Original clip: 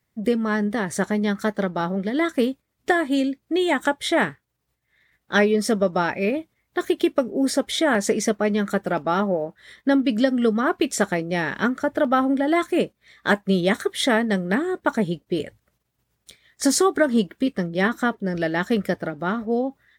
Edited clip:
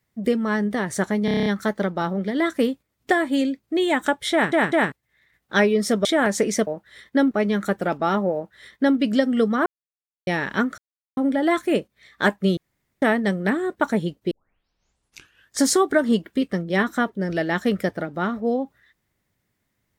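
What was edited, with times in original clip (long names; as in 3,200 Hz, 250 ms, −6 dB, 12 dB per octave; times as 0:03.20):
0:01.25: stutter 0.03 s, 8 plays
0:04.11: stutter in place 0.20 s, 3 plays
0:05.84–0:07.74: remove
0:09.39–0:10.03: duplicate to 0:08.36
0:10.71–0:11.32: silence
0:11.83–0:12.22: silence
0:13.62–0:14.07: fill with room tone
0:15.36: tape start 1.29 s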